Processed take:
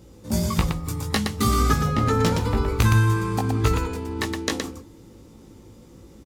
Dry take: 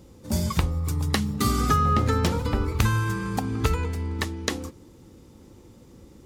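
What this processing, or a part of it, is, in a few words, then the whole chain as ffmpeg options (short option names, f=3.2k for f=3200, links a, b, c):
slapback doubling: -filter_complex "[0:a]asplit=3[a][b][c];[b]adelay=18,volume=-3.5dB[d];[c]adelay=118,volume=-4.5dB[e];[a][d][e]amix=inputs=3:normalize=0"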